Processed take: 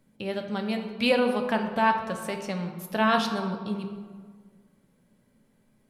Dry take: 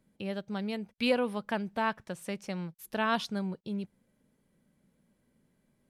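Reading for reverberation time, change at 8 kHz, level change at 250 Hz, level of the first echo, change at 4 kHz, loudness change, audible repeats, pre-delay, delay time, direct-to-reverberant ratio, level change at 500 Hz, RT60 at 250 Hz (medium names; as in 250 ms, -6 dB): 1.7 s, +5.5 dB, +5.5 dB, no echo, +6.0 dB, +6.5 dB, no echo, 4 ms, no echo, 4.0 dB, +6.5 dB, 1.7 s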